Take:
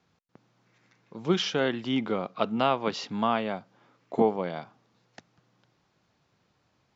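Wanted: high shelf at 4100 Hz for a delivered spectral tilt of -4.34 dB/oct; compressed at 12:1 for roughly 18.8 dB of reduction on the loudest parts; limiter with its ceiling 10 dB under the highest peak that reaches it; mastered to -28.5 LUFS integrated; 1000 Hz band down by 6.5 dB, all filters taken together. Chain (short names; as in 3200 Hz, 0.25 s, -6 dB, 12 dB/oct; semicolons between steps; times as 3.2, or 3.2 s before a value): bell 1000 Hz -9 dB; high shelf 4100 Hz -3.5 dB; compressor 12:1, threshold -38 dBFS; gain +17 dB; limiter -17 dBFS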